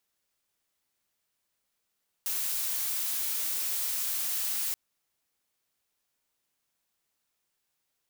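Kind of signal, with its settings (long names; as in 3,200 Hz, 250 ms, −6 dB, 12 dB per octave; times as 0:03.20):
noise blue, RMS −31 dBFS 2.48 s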